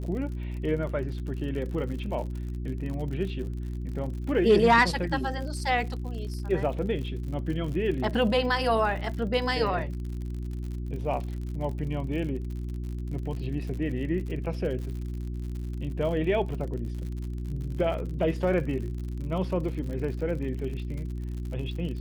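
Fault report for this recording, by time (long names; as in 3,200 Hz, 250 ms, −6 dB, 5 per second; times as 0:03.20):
surface crackle 66 per second −36 dBFS
mains hum 60 Hz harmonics 6 −33 dBFS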